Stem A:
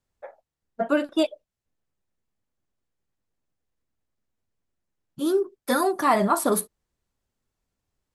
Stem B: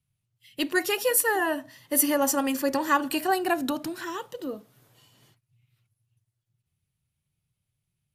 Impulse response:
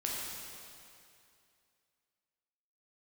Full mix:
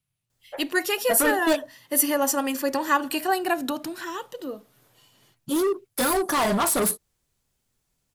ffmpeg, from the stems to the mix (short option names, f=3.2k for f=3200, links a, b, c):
-filter_complex "[0:a]highshelf=f=4.1k:g=9.5,volume=23dB,asoftclip=hard,volume=-23dB,adelay=300,volume=3dB[a];[1:a]equalizer=f=68:w=0.45:g=-8.5,volume=1.5dB[b];[a][b]amix=inputs=2:normalize=0"